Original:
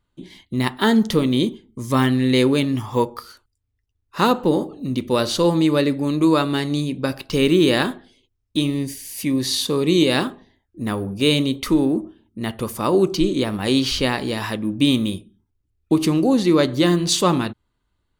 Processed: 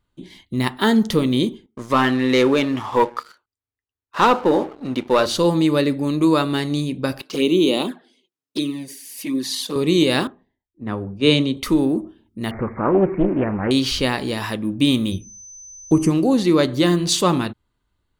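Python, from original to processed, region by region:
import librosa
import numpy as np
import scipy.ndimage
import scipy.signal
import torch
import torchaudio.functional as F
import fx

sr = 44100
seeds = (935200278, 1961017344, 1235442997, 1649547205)

y = fx.chain(x, sr, fx.bandpass_q(hz=1100.0, q=0.58),
    fx.leveller(passes=2), at=(1.66, 5.26))
y = fx.chain(y, sr, fx.highpass(hz=190.0, slope=24),
    fx.env_flanger(rest_ms=7.1, full_db=-14.5), at=(7.22, 9.76))
y = fx.chain(y, sr, fx.air_absorb(metres=79.0),
    fx.hum_notches(base_hz=60, count=3),
    fx.band_widen(depth_pct=70), at=(10.27, 11.57))
y = fx.chain(y, sr, fx.zero_step(step_db=-30.0),
    fx.brickwall_lowpass(high_hz=2300.0),
    fx.doppler_dist(depth_ms=0.46), at=(12.51, 13.71))
y = fx.low_shelf(y, sr, hz=120.0, db=12.0, at=(15.11, 16.09), fade=0.02)
y = fx.dmg_tone(y, sr, hz=6100.0, level_db=-37.0, at=(15.11, 16.09), fade=0.02)
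y = fx.env_phaser(y, sr, low_hz=230.0, high_hz=3800.0, full_db=-14.5, at=(15.11, 16.09), fade=0.02)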